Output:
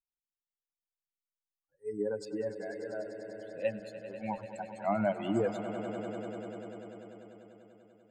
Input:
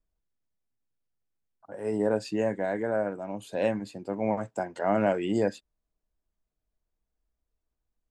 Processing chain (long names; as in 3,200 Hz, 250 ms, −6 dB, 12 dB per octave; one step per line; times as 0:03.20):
spectral dynamics exaggerated over time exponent 3
0:02.25–0:03.65: high-frequency loss of the air 450 metres
echo that builds up and dies away 98 ms, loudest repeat 5, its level −14 dB